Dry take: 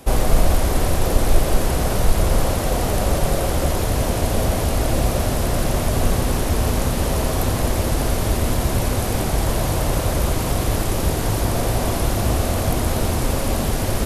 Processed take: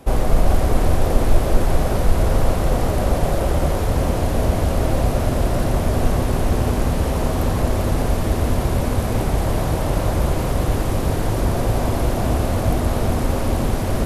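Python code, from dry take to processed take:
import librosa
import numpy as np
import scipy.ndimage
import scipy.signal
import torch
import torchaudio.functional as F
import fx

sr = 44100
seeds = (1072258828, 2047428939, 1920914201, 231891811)

y = fx.high_shelf(x, sr, hz=2500.0, db=-8.5)
y = y + 10.0 ** (-5.5 / 20.0) * np.pad(y, (int(397 * sr / 1000.0), 0))[:len(y)]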